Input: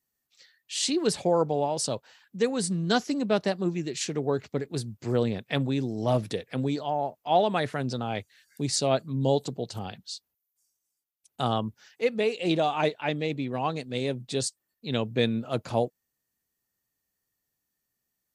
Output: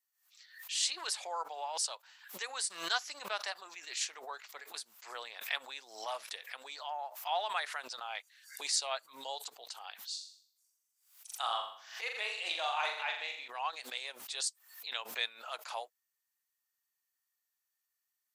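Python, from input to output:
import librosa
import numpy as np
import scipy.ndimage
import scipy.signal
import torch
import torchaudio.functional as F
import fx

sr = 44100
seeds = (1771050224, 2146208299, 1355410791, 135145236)

y = fx.room_flutter(x, sr, wall_m=7.2, rt60_s=0.56, at=(10.02, 13.48))
y = scipy.signal.sosfilt(scipy.signal.butter(4, 910.0, 'highpass', fs=sr, output='sos'), y)
y = fx.pre_swell(y, sr, db_per_s=100.0)
y = y * 10.0 ** (-3.5 / 20.0)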